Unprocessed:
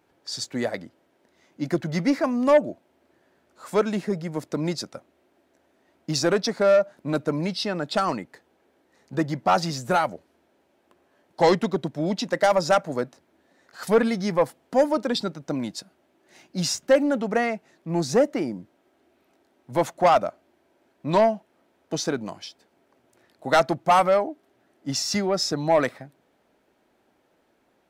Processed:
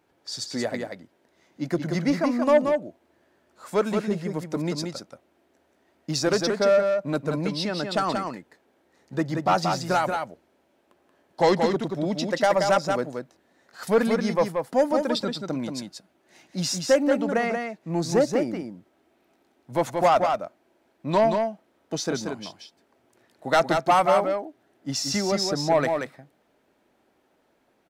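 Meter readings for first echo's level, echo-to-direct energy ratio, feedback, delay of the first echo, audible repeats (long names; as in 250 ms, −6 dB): −5.0 dB, −5.0 dB, repeats not evenly spaced, 180 ms, 1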